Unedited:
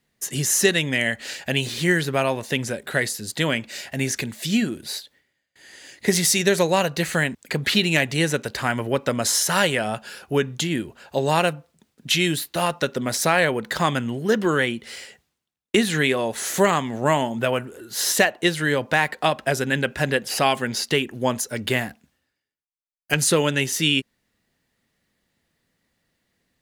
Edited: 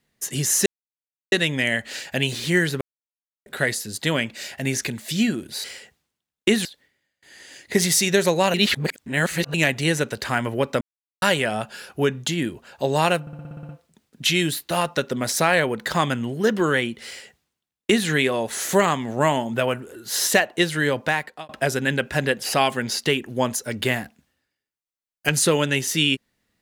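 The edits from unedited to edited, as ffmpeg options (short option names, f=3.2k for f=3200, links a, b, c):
-filter_complex "[0:a]asplit=19[a][b][c][d][e][f][g][h][i][j][k][l][m][n][o][p][q][r][s];[a]atrim=end=0.66,asetpts=PTS-STARTPTS,afade=t=out:st=0.656:d=0.004:c=hsin,apad=pad_dur=0.66[t];[b]atrim=start=0.66:end=2.15,asetpts=PTS-STARTPTS,afade=t=in:d=0.004:c=hsin,afade=t=out:st=1.486:d=0.004:c=hsin[u];[c]atrim=start=2.15:end=2.8,asetpts=PTS-STARTPTS,volume=0[v];[d]atrim=start=2.8:end=4.982,asetpts=PTS-STARTPTS,afade=t=in:d=0.004:c=hsin[w];[e]atrim=start=14.908:end=15.922[x];[f]atrim=start=4.978:end=6.872[y];[g]atrim=start=6.868:end=7.872,asetpts=PTS-STARTPTS,areverse[z];[h]atrim=start=7.868:end=9.14,asetpts=PTS-STARTPTS,afade=t=out:st=1.268:d=0.004:c=hsin[aa];[i]atrim=start=9.14:end=9.55,asetpts=PTS-STARTPTS,volume=0[ab];[j]atrim=start=9.55:end=11.602,asetpts=PTS-STARTPTS,afade=t=in:d=0.004:c=hsin[ac];[k]atrim=start=11.538:end=11.602[ad];[l]atrim=start=11.538:end=11.602[ae];[m]atrim=start=11.538:end=11.602[af];[n]atrim=start=11.538:end=11.602[ag];[o]atrim=start=11.538:end=11.602[ah];[p]atrim=start=11.538:end=11.602[ai];[q]atrim=start=11.538:end=11.602[aj];[r]atrim=start=11.538:end=19.34,asetpts=PTS-STARTPTS,afade=t=out:st=7.302:d=0.5[ak];[s]atrim=start=19.34,asetpts=PTS-STARTPTS,afade=t=in:d=0.004:c=hsin[al];[t][u][v][w]concat=n=4:v=0:a=1[am];[am][x]acrossfade=d=0.004:c1=hsin:c2=hsin[an];[an][y]acrossfade=d=0.004:c1=hsin:c2=hsin[ao];[ao][z]acrossfade=d=0.004:c1=hsin:c2=hsin[ap];[aa][ab][ac]concat=n=3:v=0:a=1[aq];[ap][aq]acrossfade=d=0.004:c1=hsin:c2=hsin[ar];[ar][ad]acrossfade=d=0.004:c1=hsin:c2=hsin[as];[as][ae]acrossfade=d=0.004:c1=hsin:c2=hsin[at];[at][af]acrossfade=d=0.004:c1=hsin:c2=hsin[au];[au][ag]acrossfade=d=0.004:c1=hsin:c2=hsin[av];[av][ah]acrossfade=d=0.004:c1=hsin:c2=hsin[aw];[aw][ai]acrossfade=d=0.004:c1=hsin:c2=hsin[ax];[ax][aj]acrossfade=d=0.004:c1=hsin:c2=hsin[ay];[ak][al]concat=n=2:v=0:a=1[az];[ay][az]acrossfade=d=0.004:c1=hsin:c2=hsin"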